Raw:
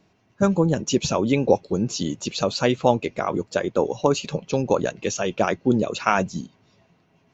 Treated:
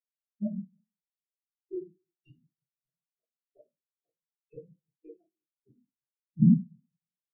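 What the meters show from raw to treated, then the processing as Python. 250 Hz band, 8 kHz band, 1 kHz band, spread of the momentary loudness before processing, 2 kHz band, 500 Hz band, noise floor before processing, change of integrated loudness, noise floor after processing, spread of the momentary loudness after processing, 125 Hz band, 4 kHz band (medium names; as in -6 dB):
-7.5 dB, no reading, under -40 dB, 6 LU, under -40 dB, -27.0 dB, -63 dBFS, -5.0 dB, under -85 dBFS, 18 LU, -6.0 dB, under -40 dB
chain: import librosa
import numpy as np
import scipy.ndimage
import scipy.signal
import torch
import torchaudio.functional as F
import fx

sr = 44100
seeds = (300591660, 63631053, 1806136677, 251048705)

p1 = fx.env_lowpass(x, sr, base_hz=2100.0, full_db=-16.0)
p2 = fx.high_shelf(p1, sr, hz=4500.0, db=2.5)
p3 = fx.over_compress(p2, sr, threshold_db=-27.0, ratio=-1.0)
p4 = p2 + F.gain(torch.from_numpy(p3), -2.5).numpy()
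p5 = fx.gate_flip(p4, sr, shuts_db=-11.0, range_db=-36)
p6 = p5 + fx.echo_feedback(p5, sr, ms=319, feedback_pct=41, wet_db=-16.5, dry=0)
p7 = fx.room_shoebox(p6, sr, seeds[0], volume_m3=160.0, walls='mixed', distance_m=3.8)
p8 = fx.spectral_expand(p7, sr, expansion=4.0)
y = F.gain(torch.from_numpy(p8), -8.0).numpy()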